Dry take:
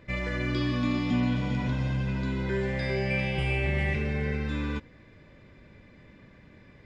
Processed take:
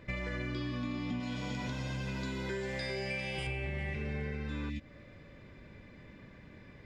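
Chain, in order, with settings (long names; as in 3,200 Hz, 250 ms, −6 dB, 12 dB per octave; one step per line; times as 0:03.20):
0:01.20–0:03.47: bass and treble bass −6 dB, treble +11 dB
0:04.72–0:05.31: healed spectral selection 340–1,700 Hz after
downward compressor, threshold −34 dBFS, peak gain reduction 11.5 dB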